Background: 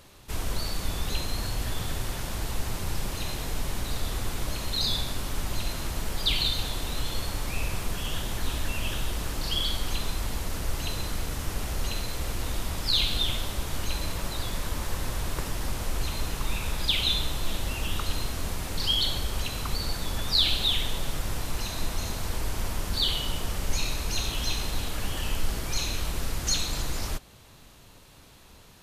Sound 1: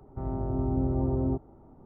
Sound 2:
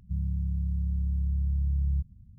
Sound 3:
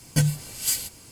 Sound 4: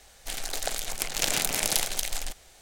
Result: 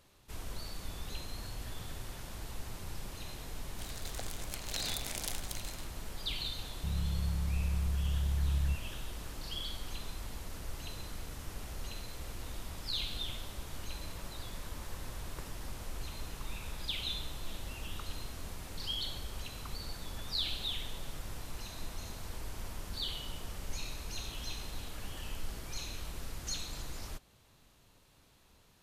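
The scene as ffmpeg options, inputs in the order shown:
-filter_complex "[0:a]volume=0.251[s0];[4:a]atrim=end=2.61,asetpts=PTS-STARTPTS,volume=0.211,afade=t=in:d=0.004:c=hsin,afade=t=out:st=2.606:d=0.004:c=hsin,adelay=3520[s1];[2:a]atrim=end=2.38,asetpts=PTS-STARTPTS,volume=0.596,afade=t=in:d=0.004:c=hsin,afade=t=out:st=2.376:d=0.004:c=hsin,adelay=6730[s2];[s0][s1][s2]amix=inputs=3:normalize=0"

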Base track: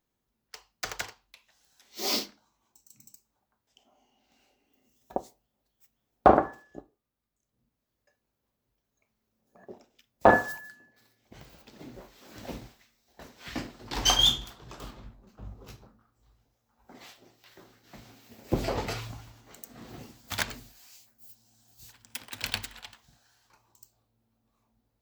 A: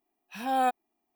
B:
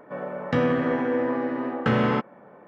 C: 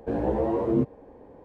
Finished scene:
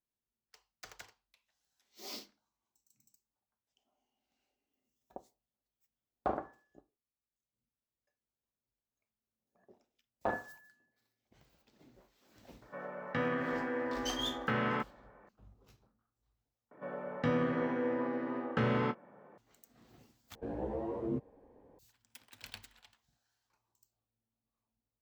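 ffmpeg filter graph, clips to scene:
-filter_complex "[2:a]asplit=2[s0][s1];[0:a]volume=0.15[s2];[s0]equalizer=f=1700:w=0.66:g=7.5[s3];[s1]asplit=2[s4][s5];[s5]adelay=25,volume=0.266[s6];[s4][s6]amix=inputs=2:normalize=0[s7];[s2]asplit=3[s8][s9][s10];[s8]atrim=end=16.714[s11];[s7]atrim=end=2.67,asetpts=PTS-STARTPTS,volume=0.355[s12];[s9]atrim=start=19.376:end=20.354[s13];[3:a]atrim=end=1.44,asetpts=PTS-STARTPTS,volume=0.237[s14];[s10]atrim=start=21.786[s15];[s3]atrim=end=2.67,asetpts=PTS-STARTPTS,volume=0.211,afade=t=in:d=0.004:c=hsin,afade=t=out:st=2.666:d=0.004:c=hsin,adelay=12620[s16];[s11][s12]acrossfade=d=0.004:c1=hsin:c2=hsin[s17];[s17][s13]acrossfade=d=0.004:c1=hsin:c2=hsin[s18];[s18][s14]acrossfade=d=0.004:c1=hsin:c2=hsin[s19];[s19][s15]acrossfade=d=0.004:c1=hsin:c2=hsin[s20];[s20][s16]amix=inputs=2:normalize=0"

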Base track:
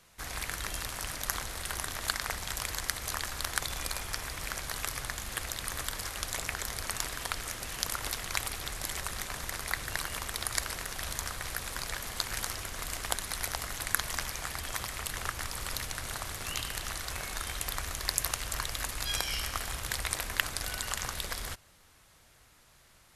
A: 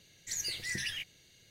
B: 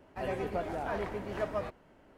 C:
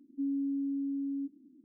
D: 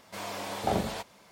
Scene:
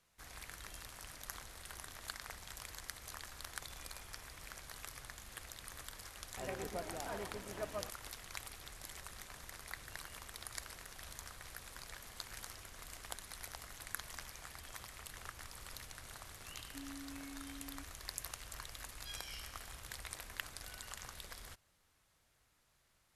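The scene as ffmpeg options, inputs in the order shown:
-filter_complex "[0:a]volume=0.2[s0];[2:a]aeval=exprs='sgn(val(0))*max(abs(val(0))-0.00422,0)':c=same[s1];[3:a]highpass=330[s2];[s1]atrim=end=2.17,asetpts=PTS-STARTPTS,volume=0.422,afade=t=in:d=0.004:c=hsin,afade=t=out:st=2.166:d=0.004:c=hsin,adelay=6200[s3];[s2]atrim=end=1.64,asetpts=PTS-STARTPTS,volume=0.224,afade=t=in:d=0.004:c=hsin,afade=t=out:st=1.636:d=0.004:c=hsin,adelay=16560[s4];[s0][s3][s4]amix=inputs=3:normalize=0"

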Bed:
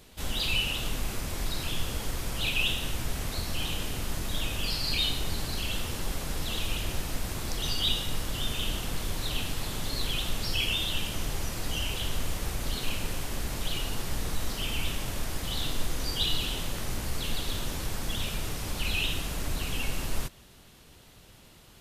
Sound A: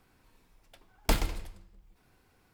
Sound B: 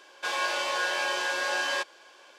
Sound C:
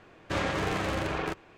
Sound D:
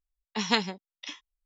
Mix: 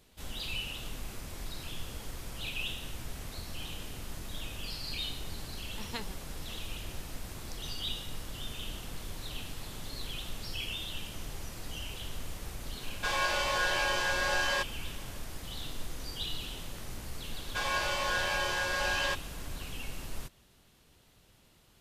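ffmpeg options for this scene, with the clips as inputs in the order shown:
-filter_complex "[2:a]asplit=2[s0][s1];[0:a]volume=0.355[s2];[4:a]atrim=end=1.45,asetpts=PTS-STARTPTS,volume=0.178,afade=t=in:d=0.004:c=hsin,afade=t=out:st=1.446:d=0.004:c=hsin,adelay=5420[s3];[s0]atrim=end=2.38,asetpts=PTS-STARTPTS,volume=0.841,afade=t=in:d=0.004:c=hsin,afade=t=out:st=2.376:d=0.004:c=hsin,adelay=12800[s4];[s1]atrim=end=2.38,asetpts=PTS-STARTPTS,volume=0.708,afade=t=in:d=0.004:c=hsin,afade=t=out:st=2.376:d=0.004:c=hsin,adelay=763812S[s5];[s2][s3][s4][s5]amix=inputs=4:normalize=0"

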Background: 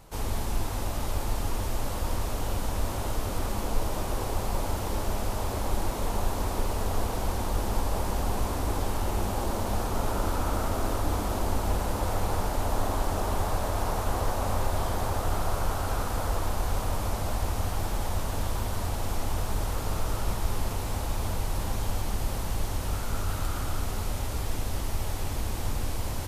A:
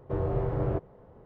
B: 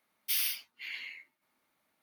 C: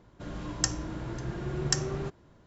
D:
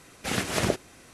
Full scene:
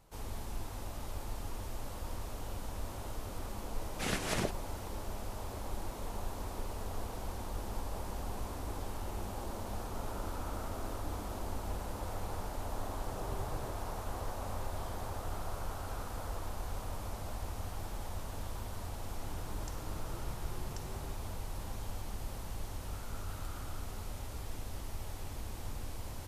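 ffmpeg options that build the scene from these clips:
-filter_complex "[0:a]volume=0.266[s0];[4:a]alimiter=limit=0.251:level=0:latency=1:release=264[s1];[3:a]acompressor=threshold=0.0141:ratio=6:attack=3.2:release=140:knee=1:detection=peak[s2];[s1]atrim=end=1.13,asetpts=PTS-STARTPTS,volume=0.447,afade=t=in:d=0.004:c=hsin,afade=t=out:st=1.126:d=0.004:c=hsin,adelay=3750[s3];[1:a]atrim=end=1.25,asetpts=PTS-STARTPTS,volume=0.133,afade=t=in:d=0.004:c=hsin,afade=t=out:st=1.246:d=0.004:c=hsin,adelay=12950[s4];[s2]atrim=end=2.46,asetpts=PTS-STARTPTS,volume=0.355,afade=t=in:d=0.004:c=hsin,afade=t=out:st=2.456:d=0.004:c=hsin,adelay=19040[s5];[s0][s3][s4][s5]amix=inputs=4:normalize=0"

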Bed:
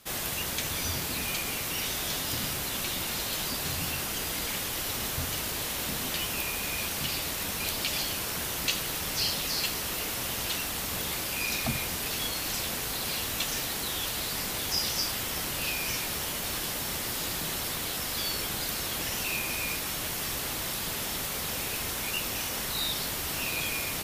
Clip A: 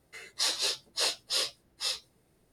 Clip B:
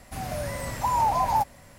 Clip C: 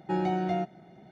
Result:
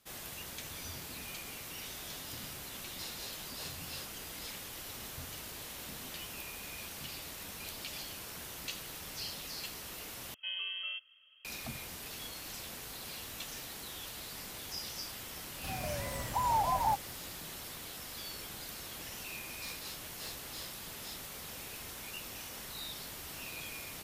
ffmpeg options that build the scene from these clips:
-filter_complex "[1:a]asplit=2[s0][s1];[0:a]volume=0.237[s2];[3:a]lowpass=f=2900:t=q:w=0.5098,lowpass=f=2900:t=q:w=0.6013,lowpass=f=2900:t=q:w=0.9,lowpass=f=2900:t=q:w=2.563,afreqshift=-3400[s3];[s1]aeval=exprs='clip(val(0),-1,0.0562)':c=same[s4];[s2]asplit=2[s5][s6];[s5]atrim=end=10.344[s7];[s3]atrim=end=1.11,asetpts=PTS-STARTPTS,volume=0.266[s8];[s6]atrim=start=11.446[s9];[s0]atrim=end=2.52,asetpts=PTS-STARTPTS,volume=0.133,afade=t=in:d=0.004:c=hsin,afade=t=out:st=2.516:d=0.004:c=hsin,adelay=2590[s10];[2:a]atrim=end=1.78,asetpts=PTS-STARTPTS,volume=0.447,afade=t=in:d=0.004:c=hsin,afade=t=out:st=1.776:d=0.004:c=hsin,adelay=15520[s11];[s4]atrim=end=2.52,asetpts=PTS-STARTPTS,volume=0.133,afade=t=in:d=0.004:c=hsin,afade=t=out:st=2.516:d=0.004:c=hsin,adelay=19220[s12];[s7][s8]acrossfade=d=0.004:c1=hsin:c2=hsin[s13];[s13][s9]acrossfade=d=0.004:c1=hsin:c2=hsin[s14];[s14][s10][s11][s12]amix=inputs=4:normalize=0"

